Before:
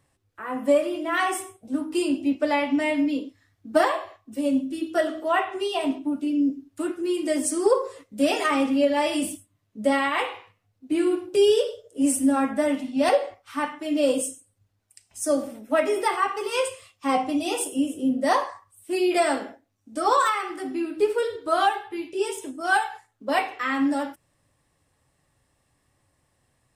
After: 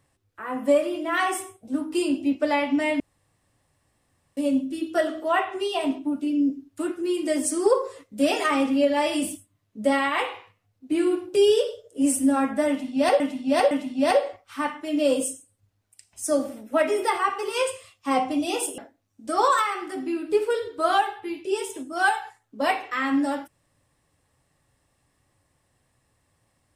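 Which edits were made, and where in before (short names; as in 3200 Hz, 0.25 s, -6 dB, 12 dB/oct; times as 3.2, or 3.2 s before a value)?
3–4.37 room tone
12.69–13.2 loop, 3 plays
17.76–19.46 cut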